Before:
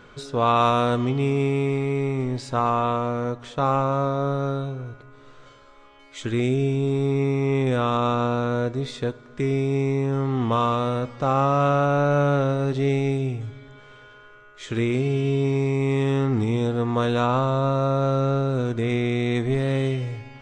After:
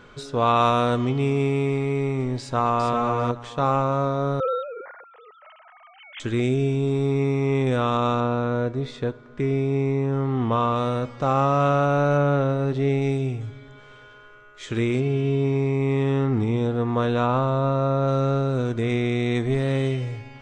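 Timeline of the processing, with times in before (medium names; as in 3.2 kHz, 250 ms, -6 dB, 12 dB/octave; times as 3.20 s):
2.39–2.91 s: echo throw 400 ms, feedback 15%, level -4 dB
4.40–6.20 s: formants replaced by sine waves
8.20–10.76 s: treble shelf 4.5 kHz -11.5 dB
12.17–13.02 s: treble shelf 4.3 kHz -9 dB
15.00–18.08 s: low-pass 3 kHz 6 dB/octave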